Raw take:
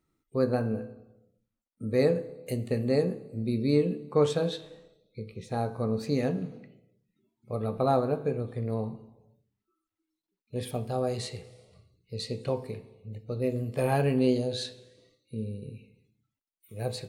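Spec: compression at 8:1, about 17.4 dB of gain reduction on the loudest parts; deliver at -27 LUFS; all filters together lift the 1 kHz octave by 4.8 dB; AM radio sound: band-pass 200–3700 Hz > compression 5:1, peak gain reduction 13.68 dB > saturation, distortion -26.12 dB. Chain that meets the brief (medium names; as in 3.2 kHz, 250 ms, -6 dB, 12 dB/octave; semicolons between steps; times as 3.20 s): peaking EQ 1 kHz +7 dB; compression 8:1, threshold -36 dBFS; band-pass 200–3700 Hz; compression 5:1, threshold -48 dBFS; saturation -36 dBFS; trim +26 dB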